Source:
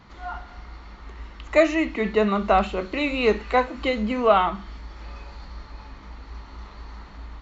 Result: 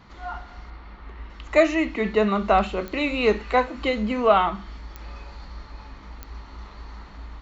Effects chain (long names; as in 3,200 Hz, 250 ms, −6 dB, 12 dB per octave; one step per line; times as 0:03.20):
0:00.70–0:01.30: low-pass filter 3,400 Hz 12 dB per octave
digital clicks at 0:02.88/0:04.96/0:06.23, −20 dBFS